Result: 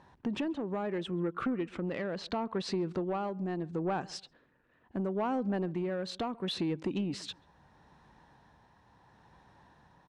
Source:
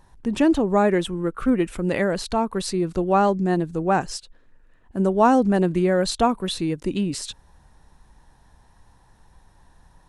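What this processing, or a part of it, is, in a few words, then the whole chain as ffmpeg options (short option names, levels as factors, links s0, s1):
AM radio: -filter_complex "[0:a]highpass=120,lowpass=3800,acompressor=threshold=0.0447:ratio=10,asoftclip=type=tanh:threshold=0.0668,tremolo=f=0.74:d=0.32,asplit=3[s0][s1][s2];[s0]afade=t=out:st=1.57:d=0.02[s3];[s1]lowpass=7400,afade=t=in:st=1.57:d=0.02,afade=t=out:st=2.69:d=0.02[s4];[s2]afade=t=in:st=2.69:d=0.02[s5];[s3][s4][s5]amix=inputs=3:normalize=0,asplit=2[s6][s7];[s7]adelay=136,lowpass=f=900:p=1,volume=0.0891,asplit=2[s8][s9];[s9]adelay=136,lowpass=f=900:p=1,volume=0.31[s10];[s6][s8][s10]amix=inputs=3:normalize=0"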